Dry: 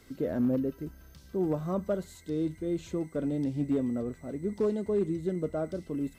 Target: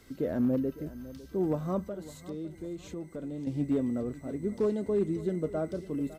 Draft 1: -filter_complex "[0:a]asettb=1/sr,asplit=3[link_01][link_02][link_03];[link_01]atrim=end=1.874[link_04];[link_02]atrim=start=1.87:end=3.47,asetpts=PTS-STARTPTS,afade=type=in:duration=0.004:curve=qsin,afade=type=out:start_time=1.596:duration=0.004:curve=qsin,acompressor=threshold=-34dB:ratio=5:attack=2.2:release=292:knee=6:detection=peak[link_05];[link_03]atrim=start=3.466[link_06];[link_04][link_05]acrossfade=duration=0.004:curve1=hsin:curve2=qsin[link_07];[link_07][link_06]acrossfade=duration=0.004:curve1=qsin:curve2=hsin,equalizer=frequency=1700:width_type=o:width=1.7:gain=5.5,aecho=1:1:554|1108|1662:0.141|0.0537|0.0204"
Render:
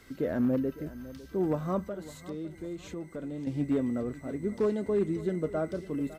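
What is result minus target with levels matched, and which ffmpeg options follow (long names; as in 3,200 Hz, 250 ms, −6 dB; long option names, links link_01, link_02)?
2,000 Hz band +4.5 dB
-filter_complex "[0:a]asettb=1/sr,asplit=3[link_01][link_02][link_03];[link_01]atrim=end=1.874[link_04];[link_02]atrim=start=1.87:end=3.47,asetpts=PTS-STARTPTS,afade=type=in:duration=0.004:curve=qsin,afade=type=out:start_time=1.596:duration=0.004:curve=qsin,acompressor=threshold=-34dB:ratio=5:attack=2.2:release=292:knee=6:detection=peak[link_05];[link_03]atrim=start=3.466[link_06];[link_04][link_05]acrossfade=duration=0.004:curve1=hsin:curve2=qsin[link_07];[link_07][link_06]acrossfade=duration=0.004:curve1=qsin:curve2=hsin,aecho=1:1:554|1108|1662:0.141|0.0537|0.0204"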